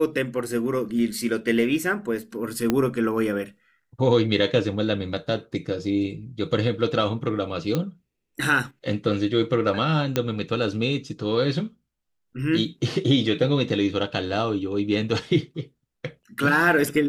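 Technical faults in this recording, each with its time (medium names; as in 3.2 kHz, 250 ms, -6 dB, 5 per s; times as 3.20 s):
2.70 s: pop -8 dBFS
7.75 s: pop -11 dBFS
10.16 s: pop -8 dBFS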